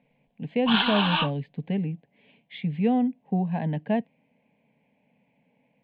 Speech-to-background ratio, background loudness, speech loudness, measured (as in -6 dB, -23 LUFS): -1.5 dB, -26.0 LUFS, -27.5 LUFS